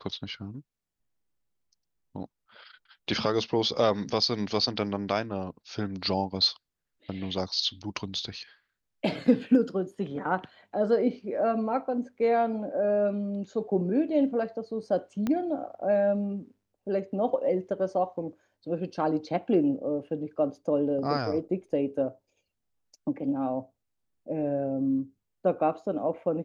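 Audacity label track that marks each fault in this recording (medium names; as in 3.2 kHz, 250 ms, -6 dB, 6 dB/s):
15.270000	15.270000	pop -17 dBFS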